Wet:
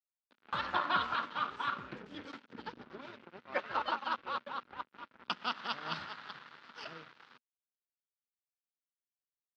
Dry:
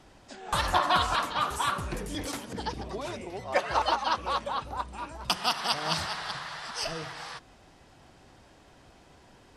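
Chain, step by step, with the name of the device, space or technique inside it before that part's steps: blown loudspeaker (crossover distortion -38 dBFS; cabinet simulation 150–4000 Hz, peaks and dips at 240 Hz +6 dB, 710 Hz -6 dB, 1.4 kHz +7 dB); trim -7 dB

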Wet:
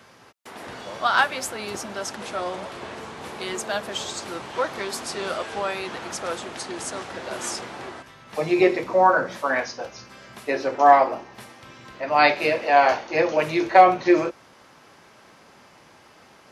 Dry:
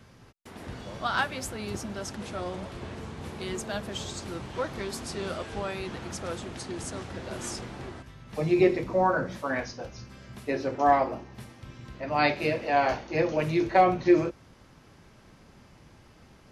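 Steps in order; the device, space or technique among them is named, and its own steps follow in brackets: filter by subtraction (in parallel: low-pass 820 Hz 12 dB/octave + polarity flip); on the sum: trim +6.5 dB

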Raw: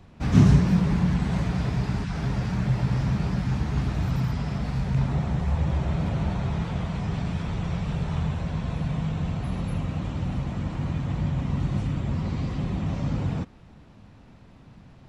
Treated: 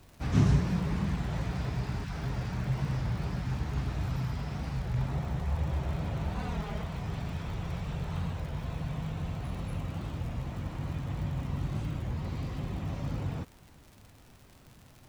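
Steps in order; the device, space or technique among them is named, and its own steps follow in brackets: 6.36–6.82 s: comb 4.4 ms, depth 85%; peaking EQ 200 Hz -5.5 dB 0.76 oct; warped LP (warped record 33 1/3 rpm, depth 160 cents; crackle 85 per s -37 dBFS; pink noise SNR 31 dB); trim -5.5 dB

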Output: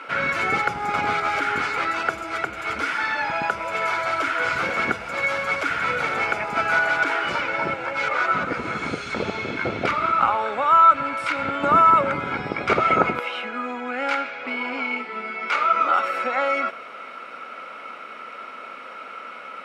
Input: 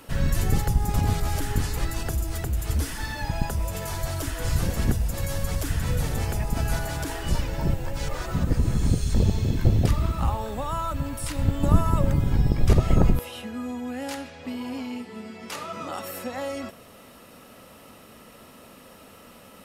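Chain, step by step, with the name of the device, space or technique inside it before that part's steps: tin-can telephone (band-pass 440–3100 Hz; small resonant body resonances 1.4/2.2 kHz, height 17 dB, ringing for 20 ms); trim +7.5 dB

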